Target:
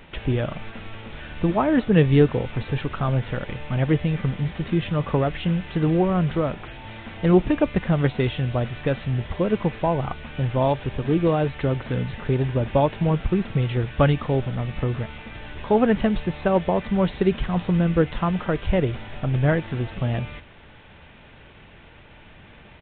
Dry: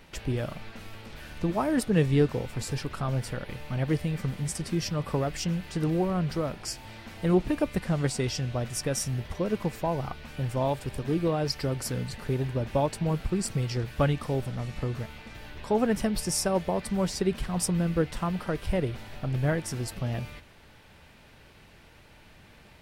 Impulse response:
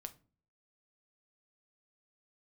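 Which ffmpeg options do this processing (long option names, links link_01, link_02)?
-af "aresample=8000,aresample=44100,volume=6.5dB"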